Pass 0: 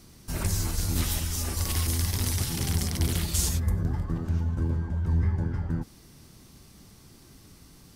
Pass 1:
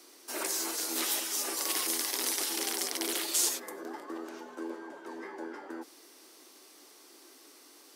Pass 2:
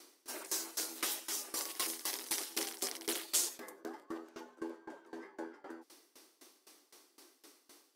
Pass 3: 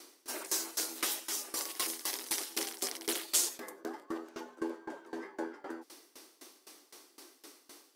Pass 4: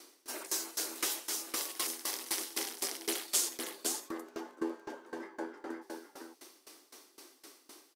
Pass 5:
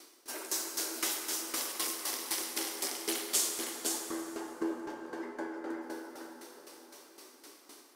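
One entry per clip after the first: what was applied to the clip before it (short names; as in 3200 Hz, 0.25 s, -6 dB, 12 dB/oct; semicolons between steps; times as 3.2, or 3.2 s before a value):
steep high-pass 300 Hz 48 dB/oct; gain +1 dB
dB-ramp tremolo decaying 3.9 Hz, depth 21 dB
vocal rider within 3 dB 2 s; gain +3 dB
echo 0.511 s -5 dB; gain -1.5 dB
plate-style reverb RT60 4.1 s, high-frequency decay 0.45×, DRR 2 dB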